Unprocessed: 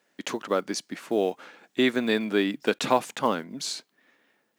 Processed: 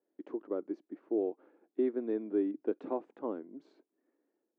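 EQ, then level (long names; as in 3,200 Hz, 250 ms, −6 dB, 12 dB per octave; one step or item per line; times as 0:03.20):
four-pole ladder band-pass 370 Hz, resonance 60%
0.0 dB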